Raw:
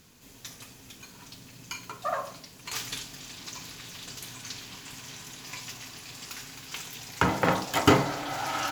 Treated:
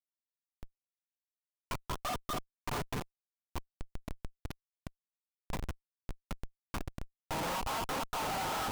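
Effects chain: EQ curve 320 Hz 0 dB, 970 Hz +11 dB, 4700 Hz -6 dB, 16000 Hz -15 dB; step gate "xxx.x.x..xxxxx." 154 bpm -60 dB; on a send: delay with a stepping band-pass 0.239 s, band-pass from 1000 Hz, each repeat 1.4 oct, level -6.5 dB; on the sum: flange 0.5 Hz, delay 3.5 ms, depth 4.4 ms, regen +43%; Schmitt trigger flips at -35 dBFS; gain -2.5 dB

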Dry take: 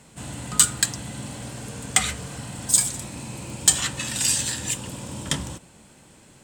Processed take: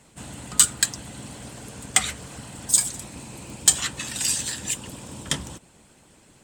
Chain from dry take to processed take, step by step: harmonic-percussive split percussive +9 dB; gain -8.5 dB

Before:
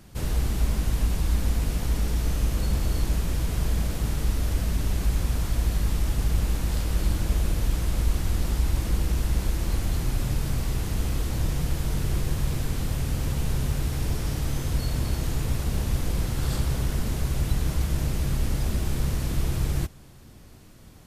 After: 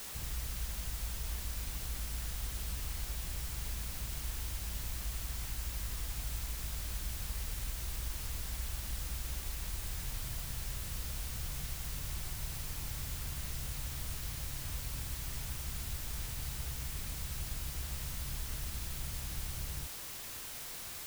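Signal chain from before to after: compressor 2.5:1, threshold -31 dBFS, peak gain reduction 10 dB; passive tone stack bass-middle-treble 6-0-2; requantised 8-bit, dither triangular; gain +3.5 dB

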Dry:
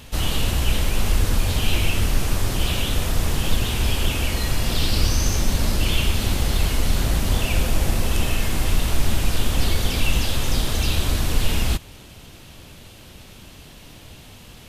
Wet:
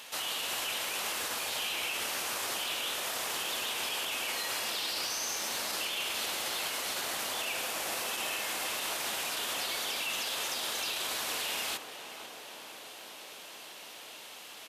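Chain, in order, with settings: HPF 710 Hz 12 dB/oct; limiter -25.5 dBFS, peak gain reduction 11 dB; on a send: tape echo 0.497 s, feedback 86%, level -7.5 dB, low-pass 1500 Hz; on the sum: downsampling 32000 Hz

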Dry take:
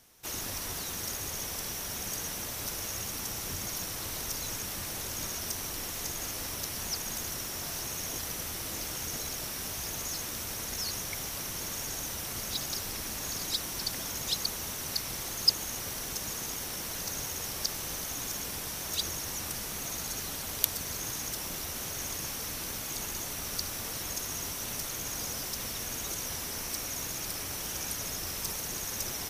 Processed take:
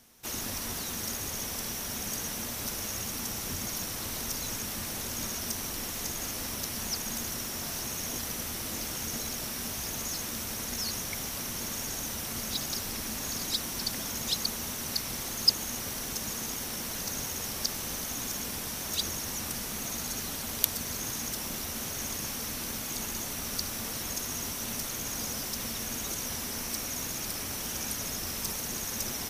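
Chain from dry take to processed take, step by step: bell 230 Hz +8.5 dB 0.31 oct; gain +1 dB

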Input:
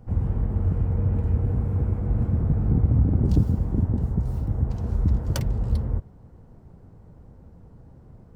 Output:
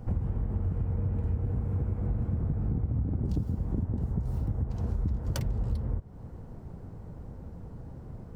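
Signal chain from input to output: compressor 6:1, threshold -32 dBFS, peak gain reduction 17 dB; gain +5 dB

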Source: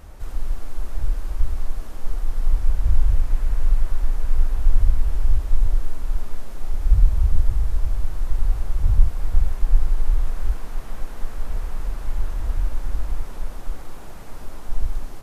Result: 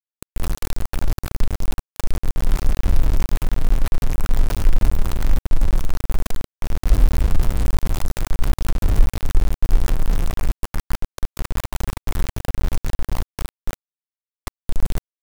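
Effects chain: dark delay 0.255 s, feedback 77%, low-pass 540 Hz, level -22 dB; sample gate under -18.5 dBFS

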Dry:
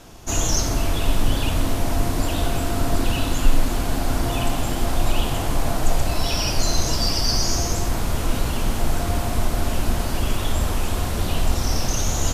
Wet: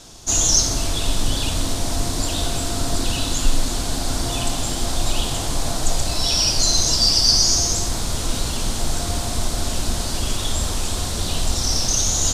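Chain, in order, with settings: band shelf 5700 Hz +10.5 dB; gain -2 dB

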